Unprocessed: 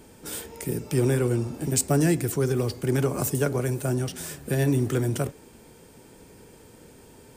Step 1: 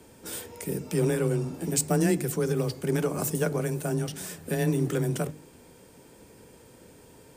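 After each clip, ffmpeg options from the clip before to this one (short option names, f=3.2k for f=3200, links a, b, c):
-af "afreqshift=20,bandreject=f=50.59:t=h:w=4,bandreject=f=101.18:t=h:w=4,bandreject=f=151.77:t=h:w=4,bandreject=f=202.36:t=h:w=4,bandreject=f=252.95:t=h:w=4,bandreject=f=303.54:t=h:w=4,bandreject=f=354.13:t=h:w=4,volume=-2dB"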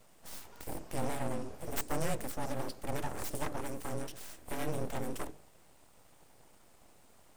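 -af "highpass=f=76:w=0.5412,highpass=f=76:w=1.3066,aeval=exprs='abs(val(0))':c=same,volume=-7dB"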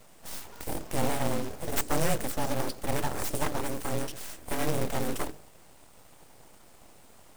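-af "acrusher=bits=3:mode=log:mix=0:aa=0.000001,volume=6.5dB"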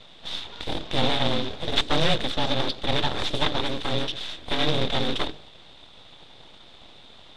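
-af "lowpass=f=3.6k:t=q:w=9.6,volume=4dB"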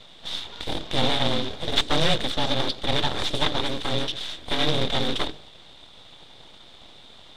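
-af "highshelf=f=7.3k:g=8,bandreject=f=2.6k:w=29"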